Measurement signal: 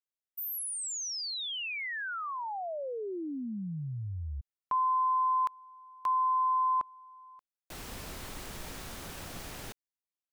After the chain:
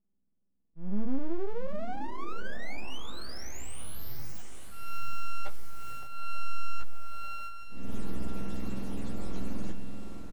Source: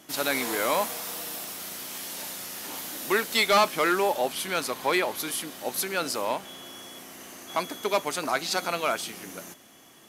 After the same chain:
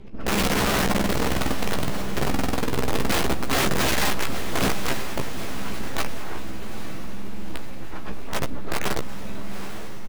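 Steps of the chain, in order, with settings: spectrum inverted on a logarithmic axis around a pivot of 840 Hz; low-pass 12 kHz 12 dB/octave; bass shelf 180 Hz +11 dB; in parallel at 0 dB: compression 6:1, threshold -34 dBFS; on the sum: slow attack 265 ms; full-wave rectifier; feedback comb 380 Hz, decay 0.74 s, mix 50%; integer overflow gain 19.5 dB; doubling 15 ms -7 dB; on a send: echo that smears into a reverb 859 ms, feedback 52%, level -9.5 dB; on the sum: decay stretcher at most 23 dB/s

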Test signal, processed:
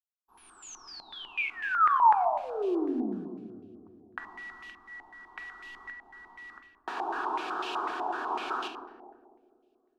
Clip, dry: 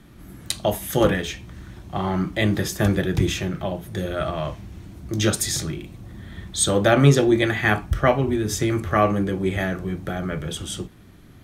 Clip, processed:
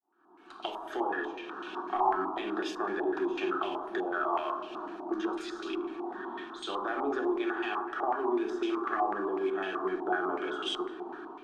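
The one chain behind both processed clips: fade-in on the opening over 1.31 s; high-pass 360 Hz 24 dB/octave; level rider gain up to 13 dB; peak limiter -8.5 dBFS; compression 4:1, threshold -31 dBFS; modulation noise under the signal 19 dB; static phaser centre 550 Hz, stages 6; saturation -23 dBFS; bucket-brigade echo 202 ms, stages 1024, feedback 64%, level -13 dB; simulated room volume 810 m³, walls mixed, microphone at 1 m; step-sequenced low-pass 8 Hz 840–2700 Hz

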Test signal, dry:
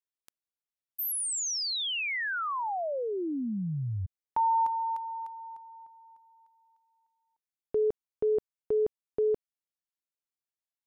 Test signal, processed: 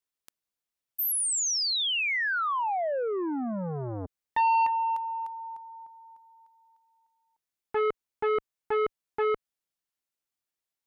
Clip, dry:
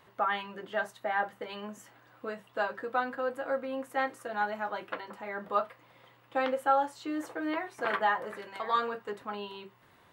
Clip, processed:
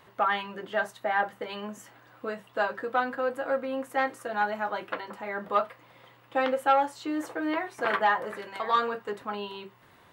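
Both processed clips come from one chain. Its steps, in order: transformer saturation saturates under 850 Hz; trim +4 dB

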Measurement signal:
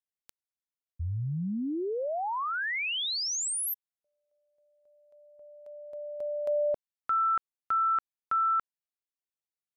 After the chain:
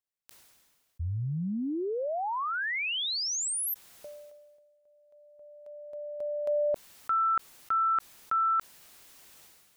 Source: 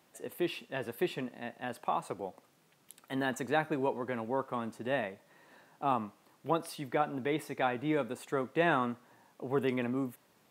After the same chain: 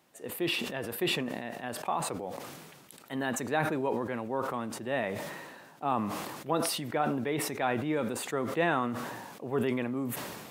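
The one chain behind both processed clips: decay stretcher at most 34 dB/s

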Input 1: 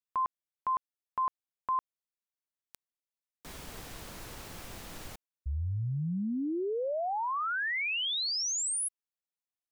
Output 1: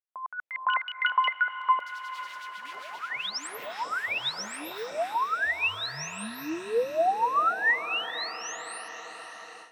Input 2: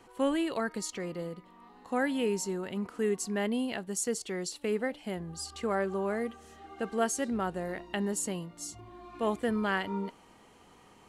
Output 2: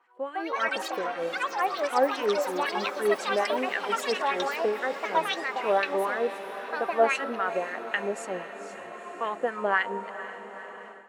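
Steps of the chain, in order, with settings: high-pass 190 Hz 6 dB/octave; LFO band-pass sine 3.8 Hz 530–1800 Hz; ever faster or slower copies 215 ms, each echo +6 st, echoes 3; on a send: echo that smears into a reverb 481 ms, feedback 70%, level -13 dB; on the sum: level rider gain up to 13 dB; trim -1 dB

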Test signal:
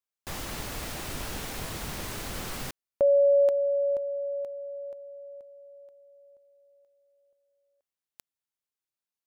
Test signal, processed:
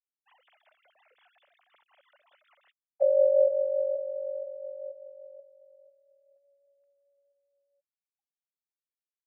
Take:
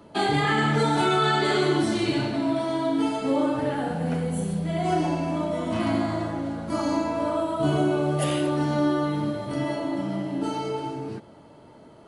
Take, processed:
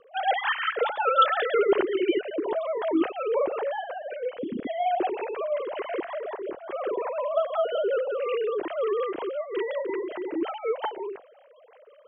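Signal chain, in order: formants replaced by sine waves; rotary cabinet horn 5.5 Hz

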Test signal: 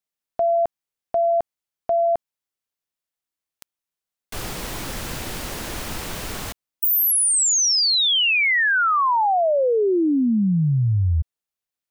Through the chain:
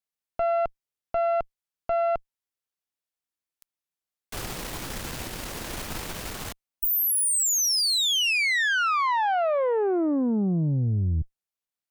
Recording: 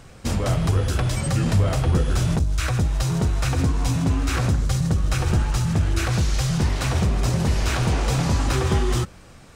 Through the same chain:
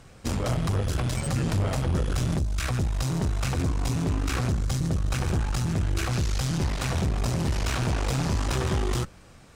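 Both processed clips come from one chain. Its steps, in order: valve stage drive 20 dB, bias 0.75

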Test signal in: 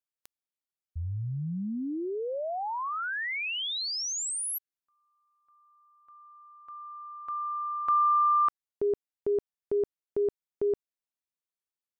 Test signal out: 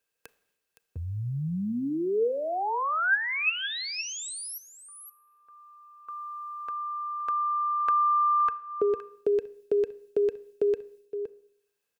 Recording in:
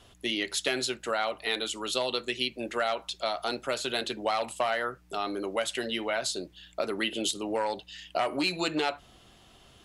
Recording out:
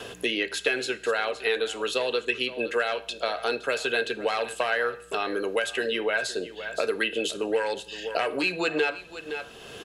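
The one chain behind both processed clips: gate with hold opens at -54 dBFS, hold 197 ms, range -7 dB; dynamic bell 1.7 kHz, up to +5 dB, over -42 dBFS, Q 0.75; small resonant body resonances 460/1600/2600 Hz, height 14 dB, ringing for 45 ms; on a send: delay 516 ms -18 dB; on the sum: Schroeder reverb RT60 0.56 s, combs from 26 ms, DRR 18 dB; three bands compressed up and down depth 70%; trim -3.5 dB

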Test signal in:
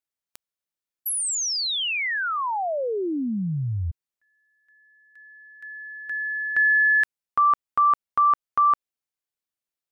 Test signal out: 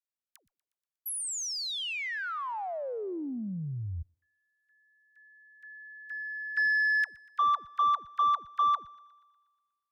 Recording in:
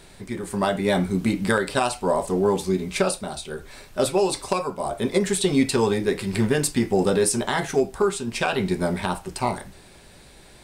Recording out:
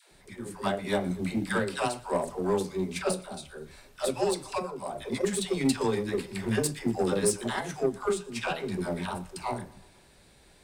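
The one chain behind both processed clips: phase dispersion lows, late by 117 ms, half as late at 450 Hz; Chebyshev shaper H 7 -26 dB, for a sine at -5.5 dBFS; thinning echo 120 ms, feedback 60%, high-pass 340 Hz, level -22 dB; trim -5.5 dB

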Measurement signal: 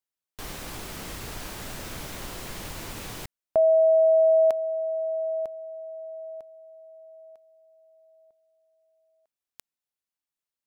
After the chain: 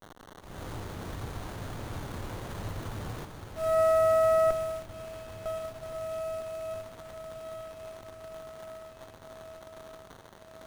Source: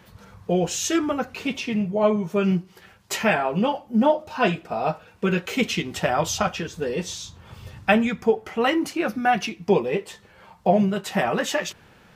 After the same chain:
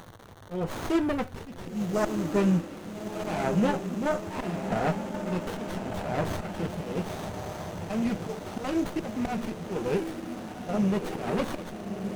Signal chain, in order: fifteen-band graphic EQ 100 Hz +9 dB, 4 kHz -5 dB, 10 kHz +7 dB; slow attack 243 ms; in parallel at -5.5 dB: hard clipper -24 dBFS; on the sum: crackle 390 per s -36 dBFS; on a send: echo that smears into a reverb 1284 ms, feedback 63%, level -7 dB; on the sum: sliding maximum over 17 samples; trim -5 dB

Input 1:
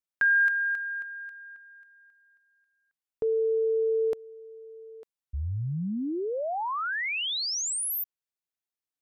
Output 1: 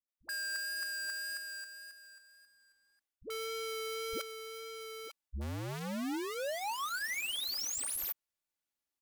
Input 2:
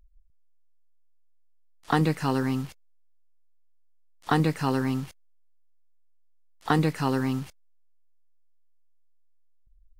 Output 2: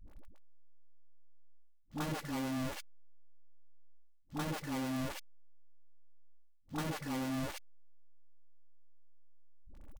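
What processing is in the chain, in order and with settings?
square wave that keeps the level; comb 3.5 ms, depth 46%; reverse; compression 10:1, threshold -36 dBFS; reverse; vibrato 1.8 Hz 13 cents; phase dispersion highs, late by 81 ms, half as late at 320 Hz

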